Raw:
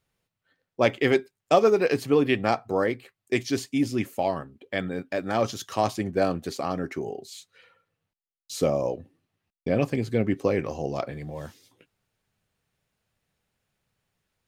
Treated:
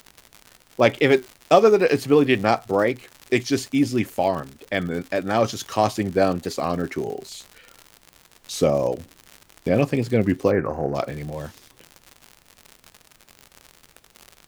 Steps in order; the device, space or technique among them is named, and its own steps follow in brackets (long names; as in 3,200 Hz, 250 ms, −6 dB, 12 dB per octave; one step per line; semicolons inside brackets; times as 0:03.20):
warped LP (wow of a warped record 33 1/3 rpm, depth 100 cents; surface crackle 110 per second −34 dBFS; pink noise bed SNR 37 dB)
0:10.51–0:10.95: high shelf with overshoot 2,200 Hz −13.5 dB, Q 3
level +4.5 dB